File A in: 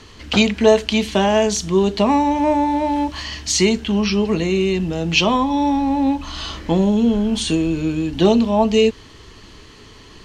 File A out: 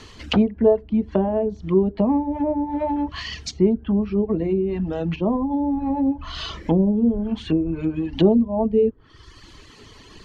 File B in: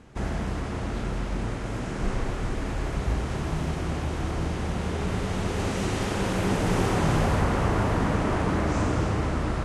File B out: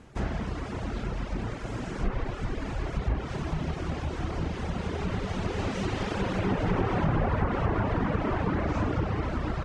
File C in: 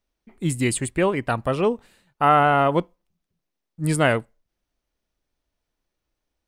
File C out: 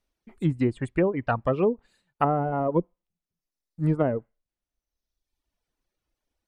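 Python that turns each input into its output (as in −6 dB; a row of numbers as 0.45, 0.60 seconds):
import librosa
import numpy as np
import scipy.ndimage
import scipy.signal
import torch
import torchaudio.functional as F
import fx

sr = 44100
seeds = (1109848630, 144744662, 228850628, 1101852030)

y = fx.dereverb_blind(x, sr, rt60_s=1.1)
y = fx.env_lowpass_down(y, sr, base_hz=510.0, full_db=-16.5)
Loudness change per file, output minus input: −4.0, −3.0, −4.5 LU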